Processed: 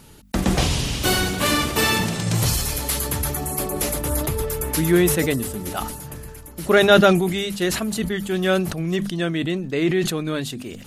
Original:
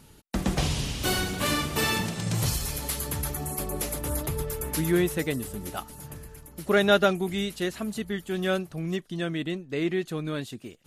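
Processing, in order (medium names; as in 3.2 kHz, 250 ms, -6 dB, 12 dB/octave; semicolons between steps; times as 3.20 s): hum notches 50/100/150/200/250 Hz; decay stretcher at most 59 dB/s; trim +6.5 dB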